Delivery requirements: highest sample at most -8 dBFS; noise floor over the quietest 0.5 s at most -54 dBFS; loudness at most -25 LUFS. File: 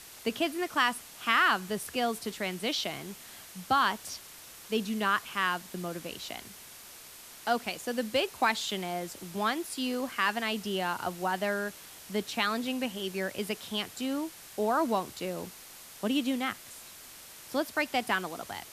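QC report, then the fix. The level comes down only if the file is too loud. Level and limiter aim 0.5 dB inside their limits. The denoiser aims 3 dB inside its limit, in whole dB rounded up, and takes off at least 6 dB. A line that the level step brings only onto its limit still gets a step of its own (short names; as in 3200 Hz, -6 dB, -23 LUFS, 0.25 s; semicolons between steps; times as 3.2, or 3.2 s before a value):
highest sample -11.0 dBFS: OK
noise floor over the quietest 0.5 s -49 dBFS: fail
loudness -31.0 LUFS: OK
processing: denoiser 8 dB, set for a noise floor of -49 dBFS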